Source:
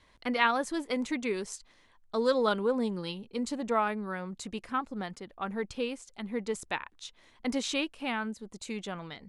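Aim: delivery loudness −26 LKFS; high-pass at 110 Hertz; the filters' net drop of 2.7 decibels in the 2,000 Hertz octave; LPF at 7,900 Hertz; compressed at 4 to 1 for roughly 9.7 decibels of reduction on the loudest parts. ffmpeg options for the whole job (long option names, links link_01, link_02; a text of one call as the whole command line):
ffmpeg -i in.wav -af "highpass=110,lowpass=7900,equalizer=frequency=2000:width_type=o:gain=-3.5,acompressor=threshold=-34dB:ratio=4,volume=13dB" out.wav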